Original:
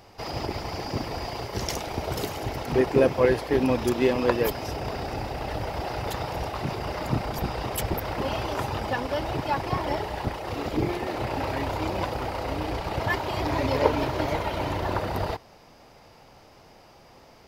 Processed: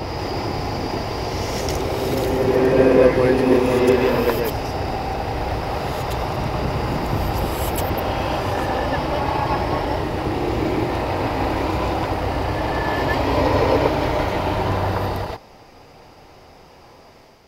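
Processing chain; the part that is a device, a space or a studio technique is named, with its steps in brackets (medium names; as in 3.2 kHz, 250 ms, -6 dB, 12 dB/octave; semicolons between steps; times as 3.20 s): reverse reverb (reverse; reverberation RT60 3.1 s, pre-delay 97 ms, DRR -4 dB; reverse); trim +1 dB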